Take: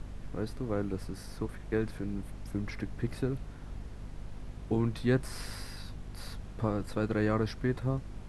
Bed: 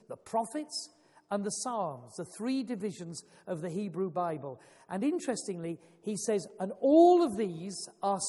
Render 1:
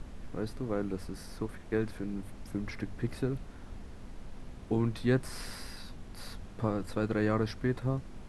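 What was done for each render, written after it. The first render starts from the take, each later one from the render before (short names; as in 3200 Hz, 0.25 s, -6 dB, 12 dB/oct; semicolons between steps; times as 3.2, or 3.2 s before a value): notches 50/100/150 Hz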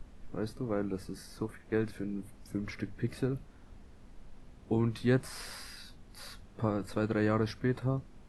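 noise print and reduce 8 dB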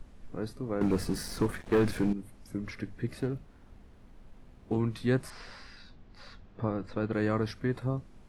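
0.81–2.13 sample leveller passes 3; 3.2–4.78 running maximum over 5 samples; 5.3–7.13 air absorption 150 m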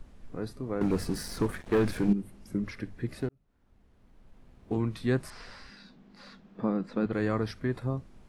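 2.08–2.64 small resonant body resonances 200/360/2800 Hz, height 7 dB; 3.29–4.81 fade in; 5.69–7.06 resonant low shelf 130 Hz -12.5 dB, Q 3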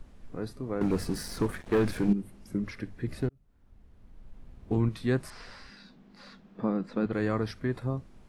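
3.07–4.89 low shelf 140 Hz +8.5 dB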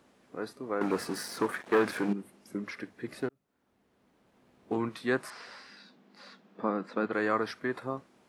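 HPF 290 Hz 12 dB/oct; dynamic EQ 1300 Hz, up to +7 dB, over -49 dBFS, Q 0.85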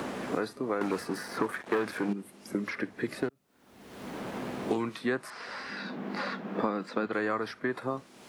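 three-band squash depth 100%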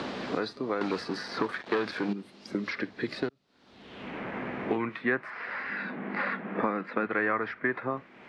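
low-pass sweep 4300 Hz -> 2100 Hz, 3.68–4.27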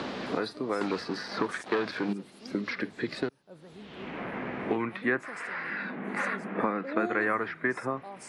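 add bed -14 dB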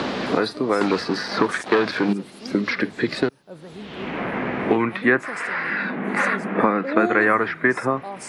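gain +10 dB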